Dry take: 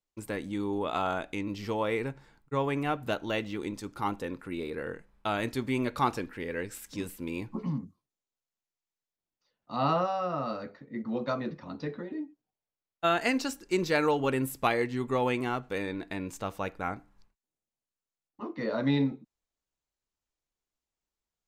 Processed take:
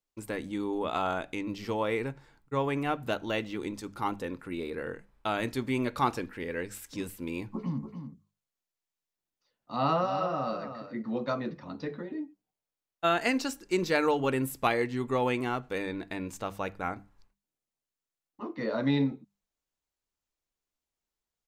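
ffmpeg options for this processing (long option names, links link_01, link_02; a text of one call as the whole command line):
ffmpeg -i in.wav -filter_complex "[0:a]asplit=3[link_01][link_02][link_03];[link_01]afade=type=out:start_time=7.81:duration=0.02[link_04];[link_02]aecho=1:1:292:0.376,afade=type=in:start_time=7.81:duration=0.02,afade=type=out:start_time=11.19:duration=0.02[link_05];[link_03]afade=type=in:start_time=11.19:duration=0.02[link_06];[link_04][link_05][link_06]amix=inputs=3:normalize=0,bandreject=frequency=50:width_type=h:width=6,bandreject=frequency=100:width_type=h:width=6,bandreject=frequency=150:width_type=h:width=6,bandreject=frequency=200:width_type=h:width=6" out.wav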